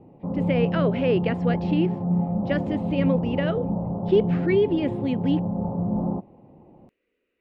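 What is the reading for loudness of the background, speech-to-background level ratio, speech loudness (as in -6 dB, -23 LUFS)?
-26.5 LUFS, 0.5 dB, -26.0 LUFS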